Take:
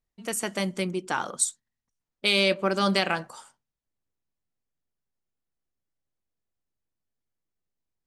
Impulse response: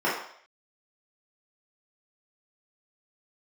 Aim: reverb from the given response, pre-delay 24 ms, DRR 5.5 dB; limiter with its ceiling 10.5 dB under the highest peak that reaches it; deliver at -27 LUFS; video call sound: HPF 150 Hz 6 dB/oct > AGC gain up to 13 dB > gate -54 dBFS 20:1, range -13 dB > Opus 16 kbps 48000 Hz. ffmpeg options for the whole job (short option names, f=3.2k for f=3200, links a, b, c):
-filter_complex "[0:a]alimiter=limit=-19dB:level=0:latency=1,asplit=2[a][b];[1:a]atrim=start_sample=2205,adelay=24[c];[b][c]afir=irnorm=-1:irlink=0,volume=-20.5dB[d];[a][d]amix=inputs=2:normalize=0,highpass=f=150:p=1,dynaudnorm=m=13dB,agate=range=-13dB:threshold=-54dB:ratio=20,volume=4.5dB" -ar 48000 -c:a libopus -b:a 16k